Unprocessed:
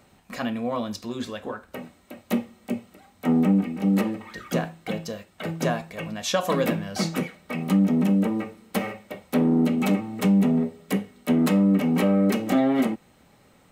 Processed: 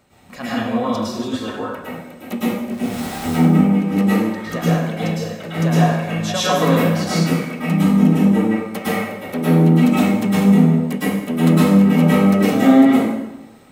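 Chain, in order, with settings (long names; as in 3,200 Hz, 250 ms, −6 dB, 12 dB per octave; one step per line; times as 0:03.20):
0:02.71–0:03.26: converter with a step at zero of −30.5 dBFS
dense smooth reverb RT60 1 s, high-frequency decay 0.75×, pre-delay 95 ms, DRR −9.5 dB
level −2 dB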